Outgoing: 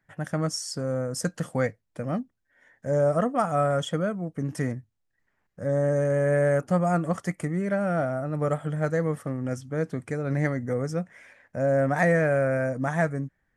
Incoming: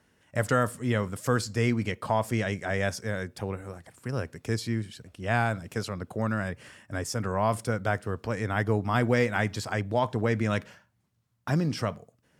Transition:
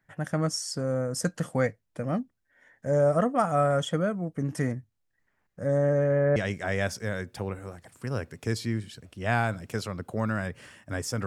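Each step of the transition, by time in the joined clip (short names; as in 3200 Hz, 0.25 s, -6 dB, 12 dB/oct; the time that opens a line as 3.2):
outgoing
5.77–6.36 LPF 7000 Hz -> 1500 Hz
6.36 switch to incoming from 2.38 s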